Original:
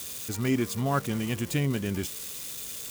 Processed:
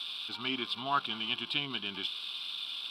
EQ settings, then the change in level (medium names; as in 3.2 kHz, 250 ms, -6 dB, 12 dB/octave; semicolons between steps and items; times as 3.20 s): high-pass 470 Hz 12 dB/octave; resonant low-pass 3.5 kHz, resonance Q 3.3; static phaser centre 1.9 kHz, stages 6; +1.0 dB